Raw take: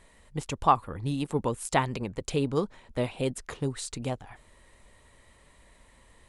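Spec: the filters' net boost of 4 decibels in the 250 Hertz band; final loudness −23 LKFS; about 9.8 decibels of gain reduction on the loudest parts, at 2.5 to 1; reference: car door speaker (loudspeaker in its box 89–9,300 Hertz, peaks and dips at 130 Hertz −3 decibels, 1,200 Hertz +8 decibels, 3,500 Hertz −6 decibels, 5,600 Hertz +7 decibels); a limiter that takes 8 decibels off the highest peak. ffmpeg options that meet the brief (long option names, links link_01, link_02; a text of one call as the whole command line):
ffmpeg -i in.wav -af "equalizer=frequency=250:width_type=o:gain=5,acompressor=threshold=-29dB:ratio=2.5,alimiter=limit=-24dB:level=0:latency=1,highpass=89,equalizer=frequency=130:width_type=q:width=4:gain=-3,equalizer=frequency=1200:width_type=q:width=4:gain=8,equalizer=frequency=3500:width_type=q:width=4:gain=-6,equalizer=frequency=5600:width_type=q:width=4:gain=7,lowpass=frequency=9300:width=0.5412,lowpass=frequency=9300:width=1.3066,volume=13.5dB" out.wav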